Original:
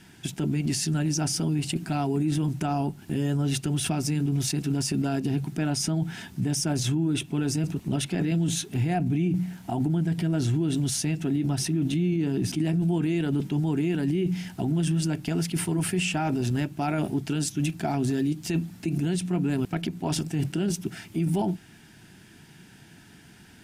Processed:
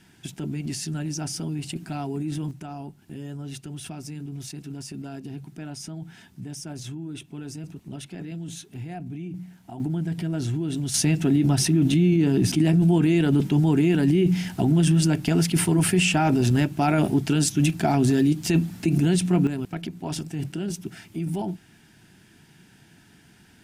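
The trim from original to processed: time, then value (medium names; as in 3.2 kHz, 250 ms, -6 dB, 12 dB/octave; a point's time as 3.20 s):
-4 dB
from 2.51 s -10 dB
from 9.80 s -2 dB
from 10.94 s +6 dB
from 19.47 s -3 dB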